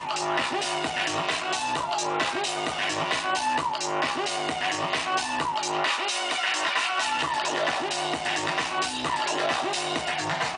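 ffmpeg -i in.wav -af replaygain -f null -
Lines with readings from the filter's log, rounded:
track_gain = +8.1 dB
track_peak = 0.152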